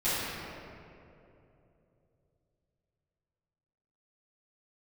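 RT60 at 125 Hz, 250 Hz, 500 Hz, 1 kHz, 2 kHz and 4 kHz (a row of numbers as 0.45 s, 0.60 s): 4.2 s, 3.3 s, 3.4 s, 2.5 s, 2.0 s, 1.4 s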